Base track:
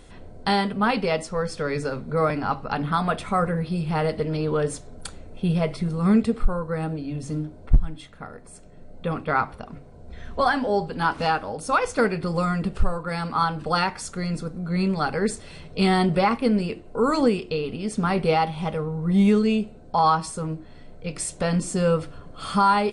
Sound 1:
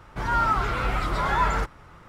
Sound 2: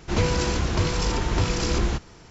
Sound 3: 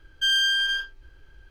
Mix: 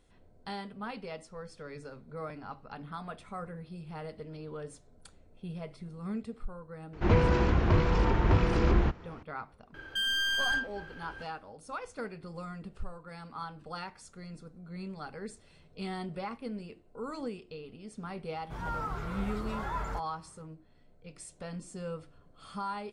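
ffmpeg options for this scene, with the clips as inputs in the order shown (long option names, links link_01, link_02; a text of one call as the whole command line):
ffmpeg -i bed.wav -i cue0.wav -i cue1.wav -i cue2.wav -filter_complex "[0:a]volume=-18dB[link_01];[2:a]lowpass=2000[link_02];[3:a]asplit=2[link_03][link_04];[link_04]highpass=frequency=720:poles=1,volume=28dB,asoftclip=type=tanh:threshold=-13dB[link_05];[link_03][link_05]amix=inputs=2:normalize=0,lowpass=frequency=1000:poles=1,volume=-6dB[link_06];[1:a]equalizer=frequency=2700:width_type=o:width=2.4:gain=-6.5[link_07];[link_02]atrim=end=2.3,asetpts=PTS-STARTPTS,volume=-1dB,afade=type=in:duration=0.004:curve=hsin,afade=type=out:start_time=2.296:duration=0.004:curve=hsin,adelay=6930[link_08];[link_06]atrim=end=1.5,asetpts=PTS-STARTPTS,volume=-3.5dB,afade=type=in:duration=0.004:curve=hsin,afade=type=out:start_time=1.496:duration=0.004:curve=hsin,adelay=9740[link_09];[link_07]atrim=end=2.08,asetpts=PTS-STARTPTS,volume=-10.5dB,afade=type=in:duration=0.004:curve=hsin,afade=type=out:start_time=2.076:duration=0.004:curve=hsin,adelay=18340[link_10];[link_01][link_08][link_09][link_10]amix=inputs=4:normalize=0" out.wav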